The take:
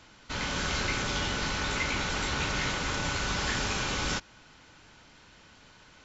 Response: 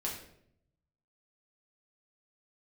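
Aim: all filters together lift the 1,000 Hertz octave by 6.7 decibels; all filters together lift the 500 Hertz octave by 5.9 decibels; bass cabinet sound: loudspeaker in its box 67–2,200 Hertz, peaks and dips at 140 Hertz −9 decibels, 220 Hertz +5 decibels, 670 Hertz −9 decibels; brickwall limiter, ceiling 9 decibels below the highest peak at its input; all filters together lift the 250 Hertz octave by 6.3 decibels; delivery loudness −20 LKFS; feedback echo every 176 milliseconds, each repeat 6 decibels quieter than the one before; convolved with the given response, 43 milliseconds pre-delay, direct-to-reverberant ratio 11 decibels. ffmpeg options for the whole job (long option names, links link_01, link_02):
-filter_complex "[0:a]equalizer=frequency=250:width_type=o:gain=4,equalizer=frequency=500:width_type=o:gain=6.5,equalizer=frequency=1000:width_type=o:gain=8,alimiter=limit=-22.5dB:level=0:latency=1,aecho=1:1:176|352|528|704|880|1056:0.501|0.251|0.125|0.0626|0.0313|0.0157,asplit=2[link_01][link_02];[1:a]atrim=start_sample=2205,adelay=43[link_03];[link_02][link_03]afir=irnorm=-1:irlink=0,volume=-13.5dB[link_04];[link_01][link_04]amix=inputs=2:normalize=0,highpass=frequency=67:width=0.5412,highpass=frequency=67:width=1.3066,equalizer=frequency=140:width_type=q:width=4:gain=-9,equalizer=frequency=220:width_type=q:width=4:gain=5,equalizer=frequency=670:width_type=q:width=4:gain=-9,lowpass=frequency=2200:width=0.5412,lowpass=frequency=2200:width=1.3066,volume=11dB"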